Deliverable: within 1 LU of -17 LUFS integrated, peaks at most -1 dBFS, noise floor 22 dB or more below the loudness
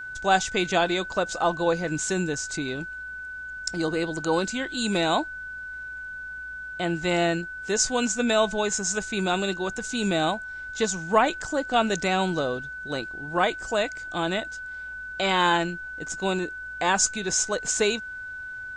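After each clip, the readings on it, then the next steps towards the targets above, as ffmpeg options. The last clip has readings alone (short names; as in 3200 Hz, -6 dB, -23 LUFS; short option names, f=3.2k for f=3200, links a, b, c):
steady tone 1500 Hz; tone level -34 dBFS; loudness -26.0 LUFS; peak -8.5 dBFS; loudness target -17.0 LUFS
-> -af "bandreject=f=1.5k:w=30"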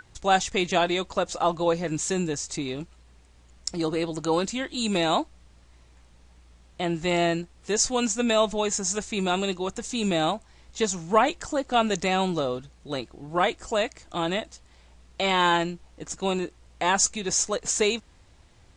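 steady tone none; loudness -26.0 LUFS; peak -8.0 dBFS; loudness target -17.0 LUFS
-> -af "volume=9dB,alimiter=limit=-1dB:level=0:latency=1"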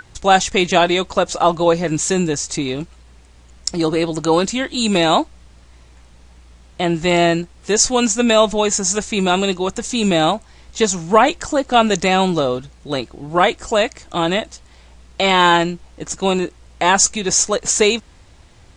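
loudness -17.0 LUFS; peak -1.0 dBFS; noise floor -47 dBFS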